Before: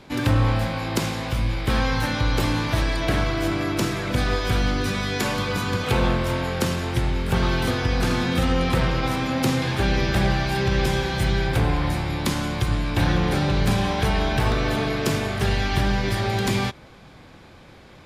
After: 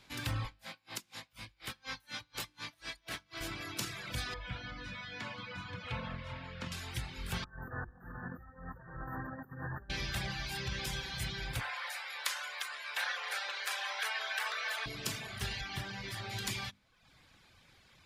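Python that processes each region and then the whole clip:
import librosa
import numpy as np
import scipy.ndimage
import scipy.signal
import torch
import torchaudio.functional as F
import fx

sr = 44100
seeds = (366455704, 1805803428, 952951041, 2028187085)

y = fx.chain(x, sr, fx.highpass(hz=280.0, slope=6),
    fx.tremolo_db(hz=4.1, depth_db=24), at=(0.45, 3.41))
y = fx.chain(y, sr, fx.lowpass(hz=2600.0, slope=12),
    fx.hum_notches(base_hz=50, count=9),
    fx.notch_comb(f0_hz=390.0), at=(4.34, 6.72))
y = fx.chain(y, sr, fx.high_shelf(hz=5200.0, db=-10.0),
    fx.over_compress(threshold_db=-25.0, ratio=-0.5),
    fx.brickwall_bandstop(low_hz=1900.0, high_hz=13000.0), at=(7.44, 9.9))
y = fx.chain(y, sr, fx.steep_highpass(hz=490.0, slope=36),
    fx.peak_eq(hz=1600.0, db=8.0, octaves=1.2), at=(11.6, 14.86))
y = fx.chain(y, sr, fx.highpass(hz=94.0, slope=12),
    fx.high_shelf(hz=3500.0, db=-5.5), at=(15.61, 16.31))
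y = fx.hum_notches(y, sr, base_hz=50, count=7)
y = fx.dereverb_blind(y, sr, rt60_s=0.78)
y = fx.tone_stack(y, sr, knobs='5-5-5')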